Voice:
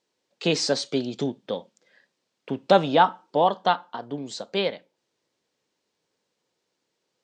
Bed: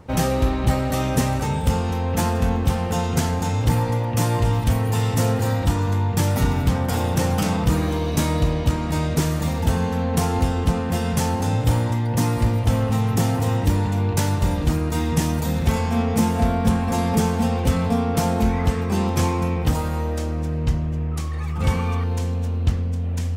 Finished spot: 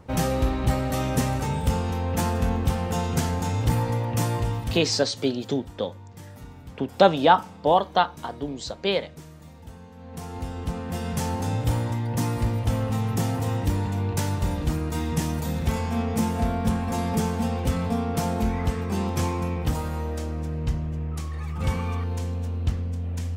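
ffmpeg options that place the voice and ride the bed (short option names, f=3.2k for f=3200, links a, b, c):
-filter_complex "[0:a]adelay=4300,volume=1dB[a];[1:a]volume=14.5dB,afade=t=out:st=4.16:d=0.92:silence=0.105925,afade=t=in:st=9.96:d=1.39:silence=0.125893[b];[a][b]amix=inputs=2:normalize=0"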